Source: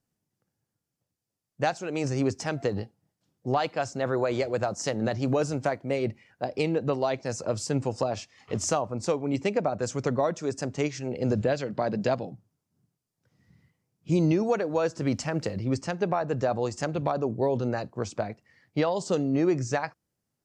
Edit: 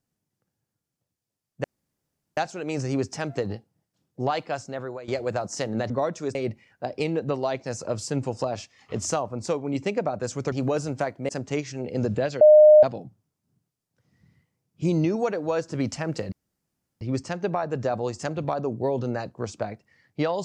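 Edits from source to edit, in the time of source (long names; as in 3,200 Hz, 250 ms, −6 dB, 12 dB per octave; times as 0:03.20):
0:01.64: splice in room tone 0.73 s
0:03.72–0:04.35: fade out linear, to −16.5 dB
0:05.17–0:05.94: swap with 0:10.11–0:10.56
0:11.68–0:12.10: beep over 609 Hz −8.5 dBFS
0:15.59: splice in room tone 0.69 s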